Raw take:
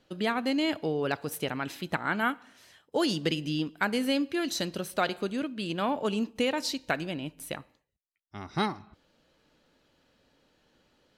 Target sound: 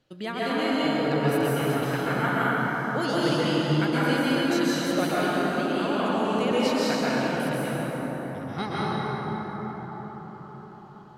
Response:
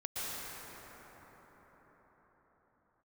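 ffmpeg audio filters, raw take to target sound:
-filter_complex "[0:a]equalizer=f=130:t=o:w=0.26:g=12[s0];[1:a]atrim=start_sample=2205,asetrate=40572,aresample=44100[s1];[s0][s1]afir=irnorm=-1:irlink=0"

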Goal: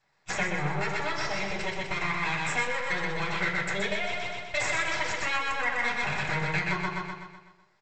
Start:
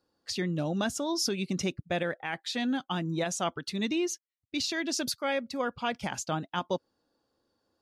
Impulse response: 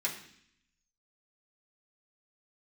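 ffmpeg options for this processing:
-filter_complex "[0:a]aresample=16000,aeval=exprs='abs(val(0))':c=same,aresample=44100,aecho=1:1:125|250|375|500|625|750|875:0.668|0.334|0.167|0.0835|0.0418|0.0209|0.0104,acompressor=threshold=0.0316:ratio=6,equalizer=f=125:t=o:w=1:g=11,equalizer=f=250:t=o:w=1:g=-7,equalizer=f=500:t=o:w=1:g=6,equalizer=f=1000:t=o:w=1:g=5,equalizer=f=2000:t=o:w=1:g=10[s0];[1:a]atrim=start_sample=2205,atrim=end_sample=6615[s1];[s0][s1]afir=irnorm=-1:irlink=0"

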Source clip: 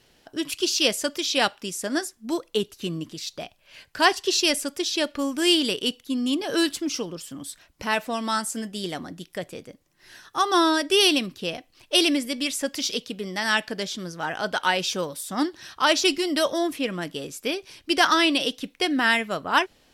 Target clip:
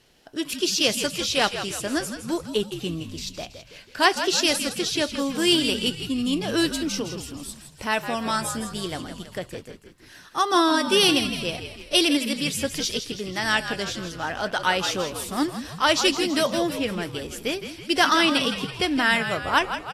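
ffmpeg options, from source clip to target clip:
-filter_complex "[0:a]asplit=7[s0][s1][s2][s3][s4][s5][s6];[s1]adelay=163,afreqshift=-67,volume=0.335[s7];[s2]adelay=326,afreqshift=-134,volume=0.178[s8];[s3]adelay=489,afreqshift=-201,volume=0.0944[s9];[s4]adelay=652,afreqshift=-268,volume=0.0501[s10];[s5]adelay=815,afreqshift=-335,volume=0.0263[s11];[s6]adelay=978,afreqshift=-402,volume=0.014[s12];[s0][s7][s8][s9][s10][s11][s12]amix=inputs=7:normalize=0" -ar 32000 -c:a aac -b:a 64k

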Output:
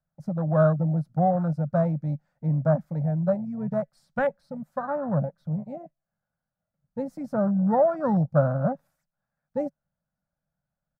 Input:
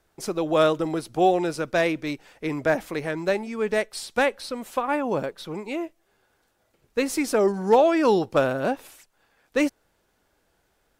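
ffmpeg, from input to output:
-af "aemphasis=mode=reproduction:type=75fm,afwtdn=0.0562,firequalizer=gain_entry='entry(100,0);entry(150,14);entry(380,-25);entry(560,0);entry(950,-7);entry(1400,-2);entry(2700,-17);entry(4800,-5);entry(9900,-2);entry(15000,10)':delay=0.05:min_phase=1"

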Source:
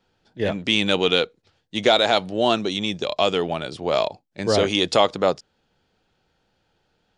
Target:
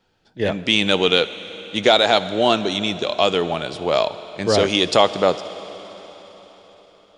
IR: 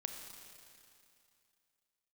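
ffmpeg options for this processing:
-filter_complex "[0:a]asplit=2[s0][s1];[1:a]atrim=start_sample=2205,asetrate=24255,aresample=44100,lowshelf=f=350:g=-6.5[s2];[s1][s2]afir=irnorm=-1:irlink=0,volume=0.376[s3];[s0][s3]amix=inputs=2:normalize=0"

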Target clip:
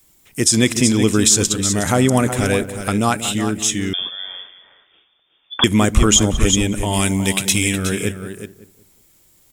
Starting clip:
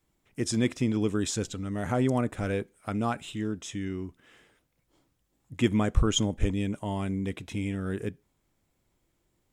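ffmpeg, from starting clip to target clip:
-filter_complex "[0:a]asettb=1/sr,asplit=3[s0][s1][s2];[s0]atrim=end=6.934[s3];[s1]atrim=start=6.93:end=7.76,asetpts=PTS-STARTPTS,afade=t=in:d=0.004:c=qsin,afade=t=out:st=0.826:d=0.004:c=qsin,highshelf=f=2100:g=9.5[s4];[s2]atrim=start=7.756[s5];[s3][s4]acrossfade=d=0.004:c1=hsin:c2=qsin[s6];[s6][s5]acrossfade=d=0.004:c1=qsin:c2=hsin,asplit=2[s7][s8];[s8]adelay=186,lowpass=f=970:p=1,volume=0.251,asplit=2[s9][s10];[s10]adelay=186,lowpass=f=970:p=1,volume=0.33,asplit=2[s11][s12];[s12]adelay=186,lowpass=f=970:p=1,volume=0.33[s13];[s9][s11][s13]amix=inputs=3:normalize=0[s14];[s7][s14]amix=inputs=2:normalize=0,crystalizer=i=4.5:c=0,asplit=2[s15][s16];[s16]aecho=0:1:367:0.316[s17];[s15][s17]amix=inputs=2:normalize=0,asettb=1/sr,asplit=3[s18][s19][s20];[s18]atrim=end=3.934[s21];[s19]atrim=start=3.93:end=5.64,asetpts=PTS-STARTPTS,afade=t=in:d=0.004:c=qsin,afade=t=out:st=1.706:d=0.004:c=qsin,lowpass=f=3100:t=q:w=0.5098,lowpass=f=3100:t=q:w=0.6013,lowpass=f=3100:t=q:w=0.9,lowpass=f=3100:t=q:w=2.563,afreqshift=-3600[s22];[s20]atrim=start=5.636[s23];[s21][s22]acrossfade=d=0.004:c1=hsin:c2=qsin[s24];[s24][s23]acrossfade=d=0.004:c1=qsin:c2=hsin,alimiter=level_in=3.55:limit=0.891:release=50:level=0:latency=1,volume=0.891"

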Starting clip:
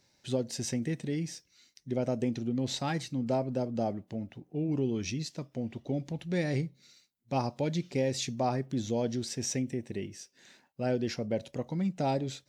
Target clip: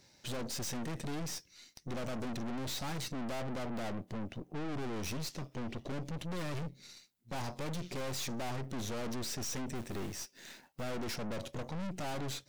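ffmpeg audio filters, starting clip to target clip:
-filter_complex "[0:a]asettb=1/sr,asplit=3[s0][s1][s2];[s0]atrim=end=9.754[s3];[s1]atrim=start=9.75:end=10.84,asetpts=PTS-STARTPTS,afade=t=in:d=0.004:c=qsin,afade=t=out:st=1.086:d=0.004:c=qsin,acrusher=bits=2:mode=log:mix=0:aa=0.000001[s4];[s2]atrim=start=10.836[s5];[s3][s4]acrossfade=d=0.004:c1=hsin:c2=qsin[s6];[s6][s5]acrossfade=d=0.004:c1=qsin:c2=hsin,aeval=exprs='(tanh(251*val(0)+0.8)-tanh(0.8))/251':c=same,volume=3.16"

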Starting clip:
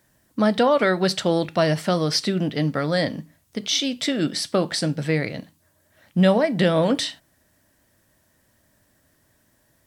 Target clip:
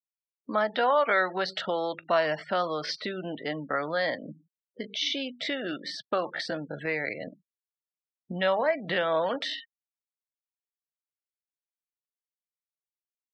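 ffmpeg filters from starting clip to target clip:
-filter_complex "[0:a]afftfilt=real='re*gte(hypot(re,im),0.02)':imag='im*gte(hypot(re,im),0.02)':win_size=1024:overlap=0.75,highpass=430,lowpass=3800,atempo=0.74,aemphasis=mode=reproduction:type=bsi,acrossover=split=690[s0][s1];[s0]acompressor=threshold=0.02:ratio=6[s2];[s2][s1]amix=inputs=2:normalize=0"

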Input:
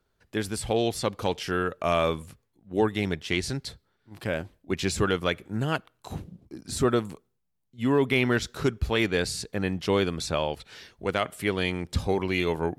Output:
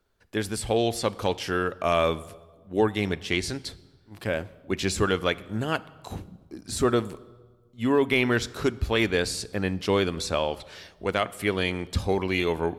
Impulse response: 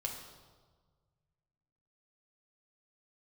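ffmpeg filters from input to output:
-filter_complex "[0:a]equalizer=f=140:t=o:w=0.27:g=-10,asplit=2[s0][s1];[1:a]atrim=start_sample=2205[s2];[s1][s2]afir=irnorm=-1:irlink=0,volume=0.211[s3];[s0][s3]amix=inputs=2:normalize=0"

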